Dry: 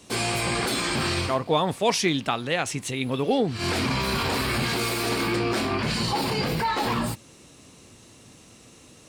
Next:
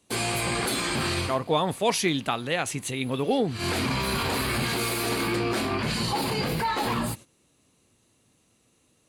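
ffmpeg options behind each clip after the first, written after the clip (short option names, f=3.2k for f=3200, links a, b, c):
-af "agate=range=-14dB:threshold=-40dB:ratio=16:detection=peak,equalizer=f=11k:w=5.1:g=12,bandreject=f=5.4k:w=11,volume=-1.5dB"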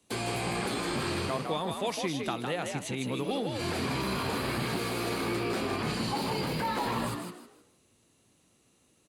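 -filter_complex "[0:a]acrossover=split=87|1200|7100[a][b][c][d];[a]acompressor=threshold=-47dB:ratio=4[e];[b]acompressor=threshold=-28dB:ratio=4[f];[c]acompressor=threshold=-36dB:ratio=4[g];[d]acompressor=threshold=-48dB:ratio=4[h];[e][f][g][h]amix=inputs=4:normalize=0,asplit=2[i][j];[j]asplit=4[k][l][m][n];[k]adelay=157,afreqshift=61,volume=-5dB[o];[l]adelay=314,afreqshift=122,volume=-15.5dB[p];[m]adelay=471,afreqshift=183,volume=-25.9dB[q];[n]adelay=628,afreqshift=244,volume=-36.4dB[r];[o][p][q][r]amix=inputs=4:normalize=0[s];[i][s]amix=inputs=2:normalize=0,volume=-2.5dB"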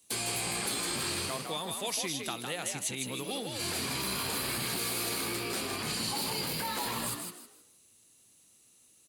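-af "crystalizer=i=5:c=0,volume=-7dB"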